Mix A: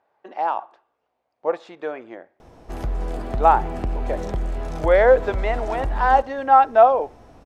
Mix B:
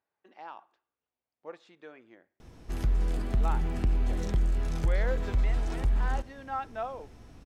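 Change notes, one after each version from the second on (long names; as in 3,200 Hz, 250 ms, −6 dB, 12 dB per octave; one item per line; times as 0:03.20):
speech −11.0 dB
master: add parametric band 690 Hz −12.5 dB 1.8 octaves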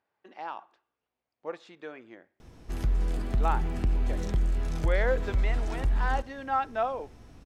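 speech +6.5 dB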